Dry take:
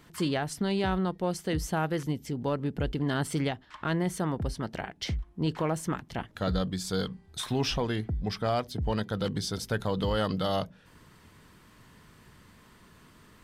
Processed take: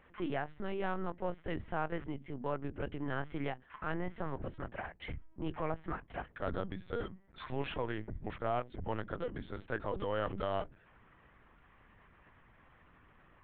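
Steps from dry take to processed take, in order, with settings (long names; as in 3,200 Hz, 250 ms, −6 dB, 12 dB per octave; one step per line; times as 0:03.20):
low-pass filter 2,500 Hz 24 dB per octave
low-shelf EQ 280 Hz −8 dB
mains-hum notches 50/100/150/200/250 Hz
in parallel at −10 dB: soft clipping −35.5 dBFS, distortion −7 dB
on the sum: pitch vibrato 0.95 Hz 17 cents
linear-prediction vocoder at 8 kHz pitch kept
level −5 dB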